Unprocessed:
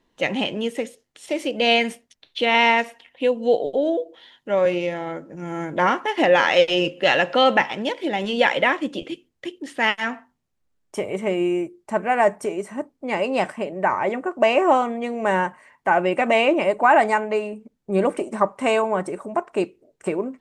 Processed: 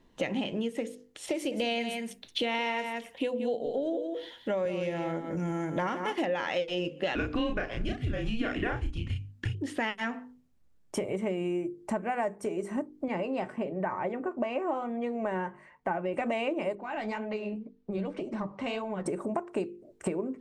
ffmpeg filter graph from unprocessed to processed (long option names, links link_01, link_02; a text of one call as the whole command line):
ffmpeg -i in.wav -filter_complex "[0:a]asettb=1/sr,asplit=3[link_01][link_02][link_03];[link_01]atrim=end=1.344[link_04];[link_02]atrim=start=1.34:end=6.25,asetpts=PTS-STARTPTS,afade=type=in:duration=0.004:curve=qsin,afade=type=out:start_time=4.906:duration=0.004:curve=qsin,highshelf=frequency=7100:gain=9.5,aecho=1:1:175:0.316,atrim=end_sample=216531[link_05];[link_03]atrim=start=6.246[link_06];[link_04][link_05]acrossfade=duration=0.004:curve1=hsin:curve2=qsin[link_07];[link_07][link_06]acrossfade=duration=0.004:curve1=qsin:curve2=hsin,asettb=1/sr,asplit=3[link_08][link_09][link_10];[link_08]atrim=end=7.154[link_11];[link_09]atrim=start=7.15:end=9.55,asetpts=PTS-STARTPTS,afade=type=in:duration=0.004:curve=qsin,afade=type=out:start_time=2.396:duration=0.004:curve=qsin,asplit=2[link_12][link_13];[link_13]adelay=33,volume=-3dB[link_14];[link_12][link_14]amix=inputs=2:normalize=0,atrim=end_sample=105840,afreqshift=-240[link_15];[link_10]atrim=start=9.546[link_16];[link_11][link_15]acrossfade=duration=0.004:curve1=hsin:curve2=qsin[link_17];[link_17][link_16]acrossfade=duration=0.004:curve1=qsin:curve2=hsin,asettb=1/sr,asplit=3[link_18][link_19][link_20];[link_18]atrim=end=13.084[link_21];[link_19]atrim=start=13.08:end=16.14,asetpts=PTS-STARTPTS,afade=type=in:duration=0.004:curve=qsin,afade=type=out:start_time=3.056:duration=0.004:curve=qsin,lowpass=frequency=2900:poles=1,flanger=delay=5.4:depth=2.7:regen=65:speed=1.1:shape=sinusoidal[link_22];[link_20]atrim=start=16.136[link_23];[link_21][link_22]acrossfade=duration=0.004:curve1=hsin:curve2=qsin[link_24];[link_24][link_23]acrossfade=duration=0.004:curve1=qsin:curve2=hsin,asettb=1/sr,asplit=3[link_25][link_26][link_27];[link_25]atrim=end=16.754[link_28];[link_26]atrim=start=16.75:end=19.06,asetpts=PTS-STARTPTS,afade=type=in:duration=0.004:curve=qsin,afade=type=out:start_time=2.306:duration=0.004:curve=qsin,lowpass=frequency=5000:width=0.5412,lowpass=frequency=5000:width=1.3066,flanger=delay=3.1:depth=7.6:regen=35:speed=1.9:shape=sinusoidal,acrossover=split=150|3000[link_29][link_30][link_31];[link_30]acompressor=threshold=-39dB:ratio=2.5:attack=3.2:release=140:knee=2.83:detection=peak[link_32];[link_29][link_32][link_31]amix=inputs=3:normalize=0[link_33];[link_27]atrim=start=19.056[link_34];[link_28][link_33]acrossfade=duration=0.004:curve1=hsin:curve2=qsin[link_35];[link_35][link_34]acrossfade=duration=0.004:curve1=qsin:curve2=hsin,lowshelf=frequency=380:gain=9,bandreject=frequency=50:width_type=h:width=6,bandreject=frequency=100:width_type=h:width=6,bandreject=frequency=150:width_type=h:width=6,bandreject=frequency=200:width_type=h:width=6,bandreject=frequency=250:width_type=h:width=6,bandreject=frequency=300:width_type=h:width=6,bandreject=frequency=350:width_type=h:width=6,bandreject=frequency=400:width_type=h:width=6,bandreject=frequency=450:width_type=h:width=6,bandreject=frequency=500:width_type=h:width=6,acompressor=threshold=-29dB:ratio=6" out.wav